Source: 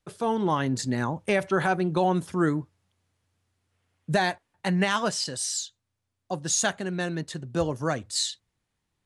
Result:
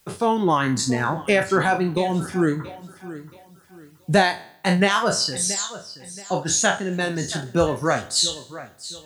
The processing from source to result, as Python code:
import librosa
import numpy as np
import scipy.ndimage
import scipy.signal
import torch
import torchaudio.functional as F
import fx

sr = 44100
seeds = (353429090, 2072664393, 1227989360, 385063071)

p1 = fx.spec_trails(x, sr, decay_s=0.68)
p2 = fx.rider(p1, sr, range_db=3, speed_s=0.5)
p3 = p1 + (p2 * librosa.db_to_amplitude(-1.5))
p4 = fx.peak_eq(p3, sr, hz=1100.0, db=-9.5, octaves=1.3, at=(1.95, 2.6))
p5 = fx.quant_dither(p4, sr, seeds[0], bits=10, dither='triangular')
p6 = fx.high_shelf(p5, sr, hz=6600.0, db=-5.5, at=(5.54, 6.93))
p7 = p6 + fx.echo_feedback(p6, sr, ms=677, feedback_pct=30, wet_db=-15.0, dry=0)
y = fx.dereverb_blind(p7, sr, rt60_s=0.9)